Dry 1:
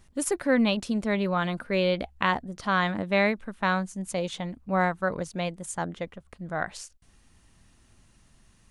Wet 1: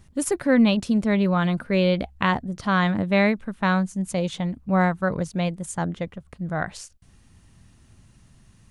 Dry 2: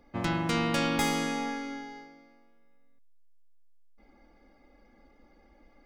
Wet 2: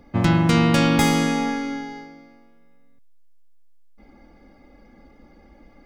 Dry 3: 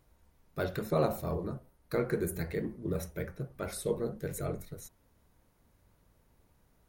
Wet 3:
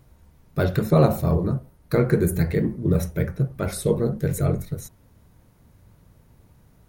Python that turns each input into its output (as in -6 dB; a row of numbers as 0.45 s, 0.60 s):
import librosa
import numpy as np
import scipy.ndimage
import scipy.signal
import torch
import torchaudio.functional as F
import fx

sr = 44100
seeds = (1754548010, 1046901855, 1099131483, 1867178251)

y = fx.peak_eq(x, sr, hz=120.0, db=9.0, octaves=1.9)
y = y * 10.0 ** (-24 / 20.0) / np.sqrt(np.mean(np.square(y)))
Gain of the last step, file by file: +1.5 dB, +7.5 dB, +8.5 dB